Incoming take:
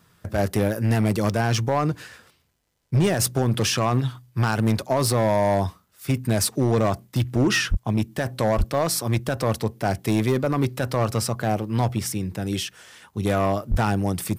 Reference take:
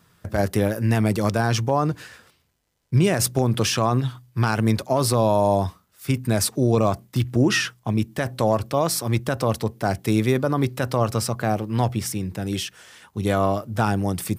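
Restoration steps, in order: clip repair -14.5 dBFS; de-plosive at 7.7/8.57/13.7

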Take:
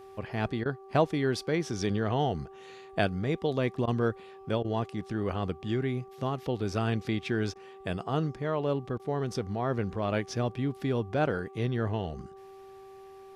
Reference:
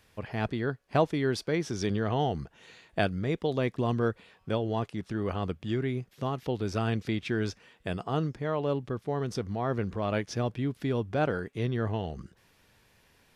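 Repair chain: de-hum 387.4 Hz, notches 3; interpolate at 0.64/3.86/4.63/7.54/8.98, 14 ms

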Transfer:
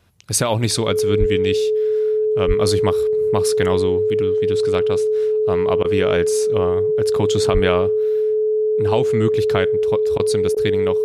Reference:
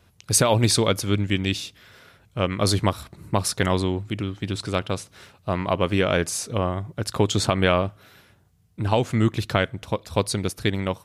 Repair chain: notch 430 Hz, Q 30; de-plosive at 1.19/2.47/7.53; interpolate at 5.83/10.18/10.55, 14 ms

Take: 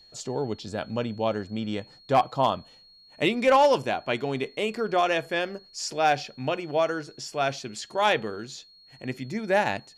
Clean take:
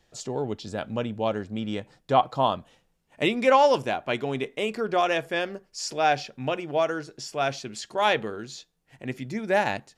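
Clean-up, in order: clip repair -12.5 dBFS; notch 4300 Hz, Q 30

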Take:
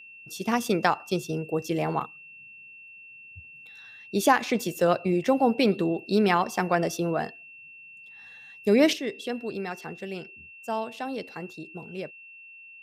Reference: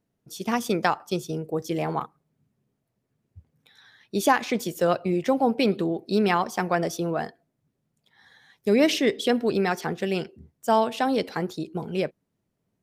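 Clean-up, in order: notch 2700 Hz, Q 30; gain 0 dB, from 8.93 s +9.5 dB

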